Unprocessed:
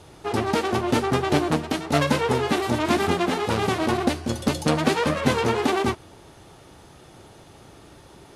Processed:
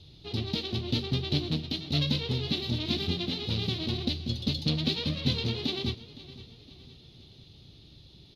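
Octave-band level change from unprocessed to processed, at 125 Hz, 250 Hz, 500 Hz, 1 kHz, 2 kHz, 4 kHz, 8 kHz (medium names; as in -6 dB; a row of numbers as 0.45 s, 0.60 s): -2.0 dB, -8.0 dB, -14.5 dB, -22.5 dB, -13.5 dB, +1.5 dB, -16.0 dB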